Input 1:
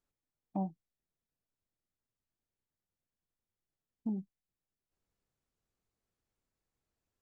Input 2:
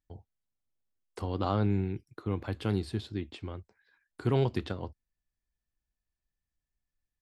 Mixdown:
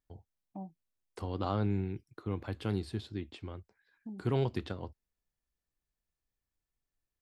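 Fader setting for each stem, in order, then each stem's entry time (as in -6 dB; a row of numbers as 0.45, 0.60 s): -8.5, -3.5 dB; 0.00, 0.00 s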